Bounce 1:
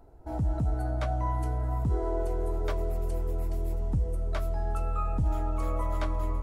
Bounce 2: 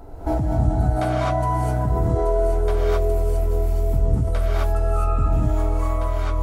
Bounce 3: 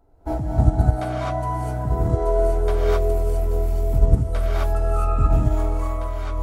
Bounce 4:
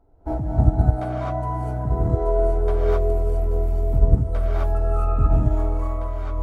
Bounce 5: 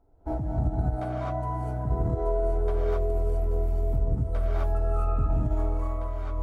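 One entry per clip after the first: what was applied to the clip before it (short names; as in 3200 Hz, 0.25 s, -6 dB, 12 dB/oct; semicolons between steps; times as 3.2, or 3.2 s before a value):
ending faded out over 1.05 s; non-linear reverb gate 0.28 s rising, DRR -7.5 dB; in parallel at +1 dB: negative-ratio compressor -33 dBFS, ratio -1
upward expander 2.5:1, over -31 dBFS; gain +5.5 dB
high shelf 2100 Hz -12 dB
limiter -12.5 dBFS, peak gain reduction 10.5 dB; gain -4.5 dB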